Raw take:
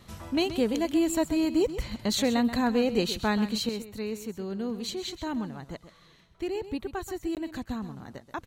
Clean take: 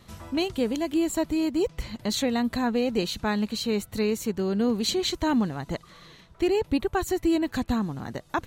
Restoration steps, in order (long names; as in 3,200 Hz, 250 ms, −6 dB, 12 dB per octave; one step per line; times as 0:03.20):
repair the gap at 0:07.35, 18 ms
echo removal 131 ms −12.5 dB
level correction +8.5 dB, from 0:03.69